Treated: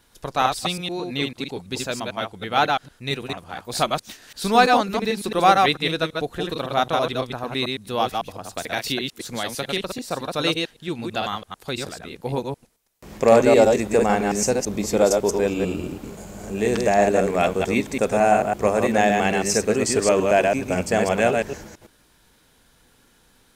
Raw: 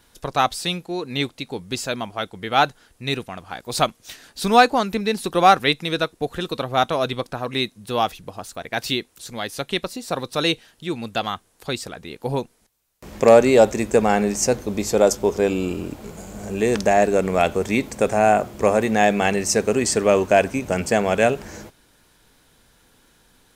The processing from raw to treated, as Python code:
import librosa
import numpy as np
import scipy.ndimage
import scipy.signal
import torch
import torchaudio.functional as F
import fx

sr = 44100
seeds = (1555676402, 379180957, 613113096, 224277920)

y = fx.reverse_delay(x, sr, ms=111, wet_db=-3.0)
y = fx.band_squash(y, sr, depth_pct=70, at=(8.57, 9.98))
y = F.gain(torch.from_numpy(y), -2.5).numpy()